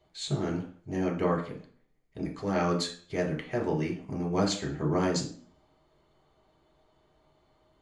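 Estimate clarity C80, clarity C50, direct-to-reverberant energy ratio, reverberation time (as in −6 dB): 14.0 dB, 9.0 dB, 0.5 dB, 0.45 s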